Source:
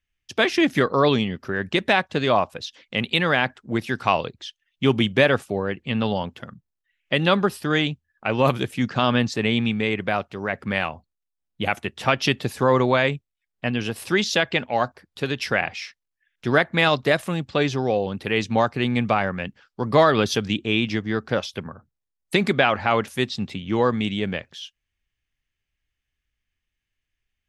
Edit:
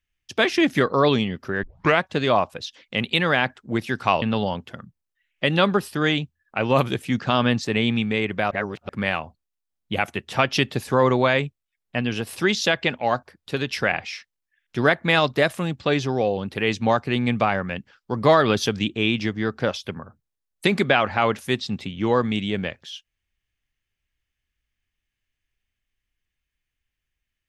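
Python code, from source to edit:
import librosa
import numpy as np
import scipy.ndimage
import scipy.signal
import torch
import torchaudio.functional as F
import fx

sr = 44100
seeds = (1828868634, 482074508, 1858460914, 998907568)

y = fx.edit(x, sr, fx.tape_start(start_s=1.63, length_s=0.38),
    fx.cut(start_s=4.22, length_s=1.69),
    fx.reverse_span(start_s=10.2, length_s=0.38), tone=tone)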